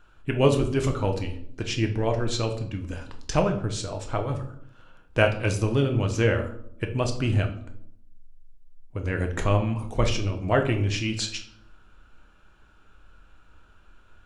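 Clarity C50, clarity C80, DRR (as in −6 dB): 10.0 dB, 14.0 dB, 4.0 dB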